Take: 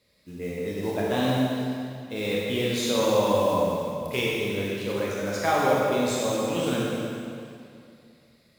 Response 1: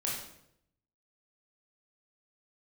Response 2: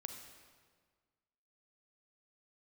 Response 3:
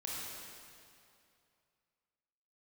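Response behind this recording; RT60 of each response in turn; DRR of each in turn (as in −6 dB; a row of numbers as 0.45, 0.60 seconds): 3; 0.75, 1.6, 2.5 seconds; −4.5, 5.0, −5.5 decibels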